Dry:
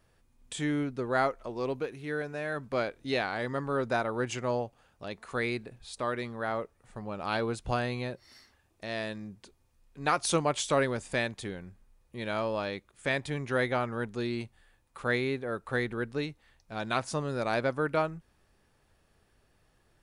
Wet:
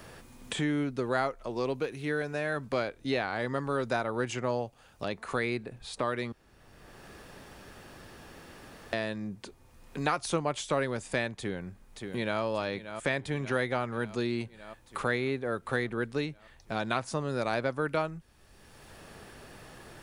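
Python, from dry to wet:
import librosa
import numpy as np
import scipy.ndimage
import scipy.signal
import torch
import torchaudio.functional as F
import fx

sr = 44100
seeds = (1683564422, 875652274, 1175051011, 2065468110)

y = fx.echo_throw(x, sr, start_s=11.34, length_s=1.07, ms=580, feedback_pct=70, wet_db=-14.0)
y = fx.edit(y, sr, fx.room_tone_fill(start_s=6.32, length_s=2.61), tone=tone)
y = fx.band_squash(y, sr, depth_pct=70)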